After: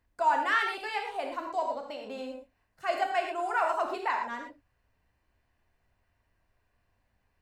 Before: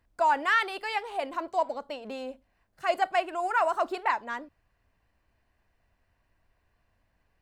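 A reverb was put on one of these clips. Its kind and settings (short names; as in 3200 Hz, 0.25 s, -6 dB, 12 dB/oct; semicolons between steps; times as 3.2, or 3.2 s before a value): non-linear reverb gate 0.14 s flat, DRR 2 dB; gain -4 dB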